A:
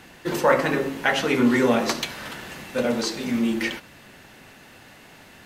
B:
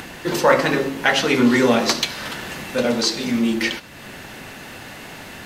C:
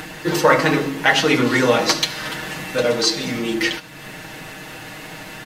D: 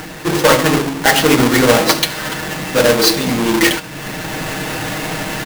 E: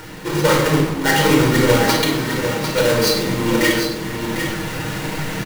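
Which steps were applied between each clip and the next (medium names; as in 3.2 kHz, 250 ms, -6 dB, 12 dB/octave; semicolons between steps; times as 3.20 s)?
dynamic bell 4.6 kHz, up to +6 dB, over -42 dBFS, Q 1.1; in parallel at +0.5 dB: upward compressor, threshold -24 dBFS; on the sum: trim -3 dB
comb 6.4 ms, depth 70%
square wave that keeps the level; level rider gain up to 9.5 dB; trim -1 dB
delay 749 ms -7.5 dB; reverberation RT60 0.85 s, pre-delay 21 ms, DRR 1 dB; trim -9 dB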